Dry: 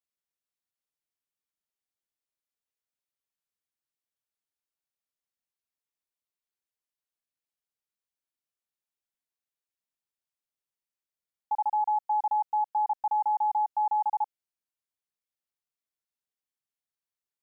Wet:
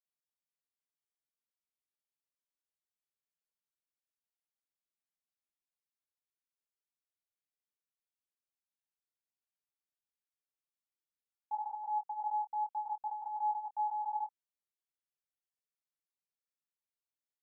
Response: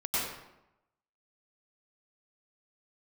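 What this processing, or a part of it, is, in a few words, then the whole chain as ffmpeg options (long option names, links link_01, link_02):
double-tracked vocal: -filter_complex "[0:a]asplit=2[link_01][link_02];[link_02]adelay=26,volume=-12dB[link_03];[link_01][link_03]amix=inputs=2:normalize=0,flanger=delay=19.5:depth=2.1:speed=0.68,volume=-7dB"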